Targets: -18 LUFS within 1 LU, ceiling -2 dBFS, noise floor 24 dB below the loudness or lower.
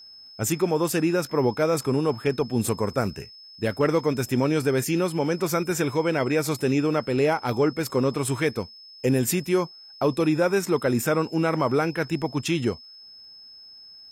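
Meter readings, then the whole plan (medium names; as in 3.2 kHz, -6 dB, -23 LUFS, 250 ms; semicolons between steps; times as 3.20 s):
tick rate 17 per s; steady tone 5.2 kHz; tone level -44 dBFS; loudness -24.5 LUFS; peak level -11.5 dBFS; loudness target -18.0 LUFS
-> de-click; band-stop 5.2 kHz, Q 30; trim +6.5 dB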